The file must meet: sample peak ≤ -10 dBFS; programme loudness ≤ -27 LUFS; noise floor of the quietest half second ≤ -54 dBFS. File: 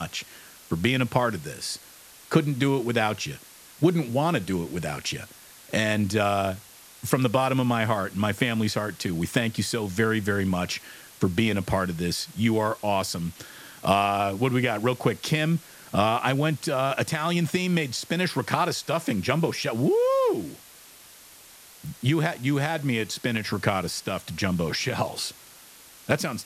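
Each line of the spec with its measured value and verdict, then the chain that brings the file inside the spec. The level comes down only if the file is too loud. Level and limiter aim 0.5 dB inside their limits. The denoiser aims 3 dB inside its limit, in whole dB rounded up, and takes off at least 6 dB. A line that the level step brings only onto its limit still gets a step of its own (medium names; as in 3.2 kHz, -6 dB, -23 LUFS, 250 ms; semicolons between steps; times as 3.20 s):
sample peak -4.5 dBFS: fail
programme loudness -26.0 LUFS: fail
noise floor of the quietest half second -49 dBFS: fail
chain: noise reduction 7 dB, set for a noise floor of -49 dBFS; trim -1.5 dB; peak limiter -10.5 dBFS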